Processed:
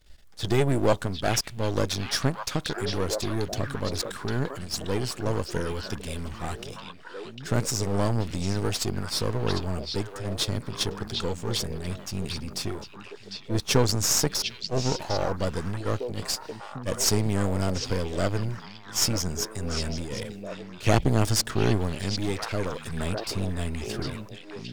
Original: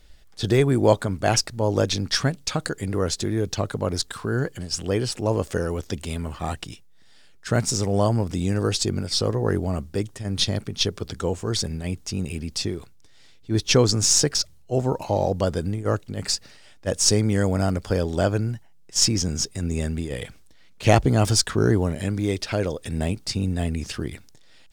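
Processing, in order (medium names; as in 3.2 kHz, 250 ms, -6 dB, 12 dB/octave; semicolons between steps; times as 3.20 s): partial rectifier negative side -12 dB; repeats whose band climbs or falls 751 ms, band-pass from 3.4 kHz, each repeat -1.4 oct, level -2 dB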